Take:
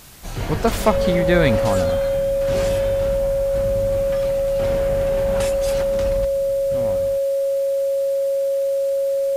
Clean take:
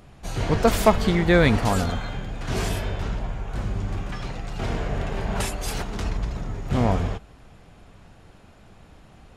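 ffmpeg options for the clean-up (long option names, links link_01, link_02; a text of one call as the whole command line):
ffmpeg -i in.wav -af "adeclick=threshold=4,bandreject=frequency=550:width=30,afwtdn=0.0063,asetnsamples=nb_out_samples=441:pad=0,asendcmd='6.25 volume volume 10.5dB',volume=0dB" out.wav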